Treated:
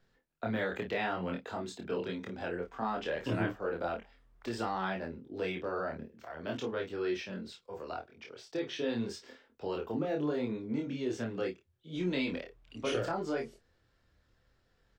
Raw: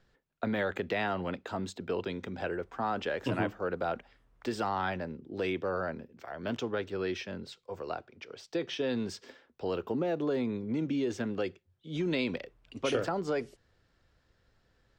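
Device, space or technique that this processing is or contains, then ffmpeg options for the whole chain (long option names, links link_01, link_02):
double-tracked vocal: -filter_complex "[0:a]asplit=2[link_01][link_02];[link_02]adelay=27,volume=-6dB[link_03];[link_01][link_03]amix=inputs=2:normalize=0,flanger=delay=22.5:depth=4:speed=0.74"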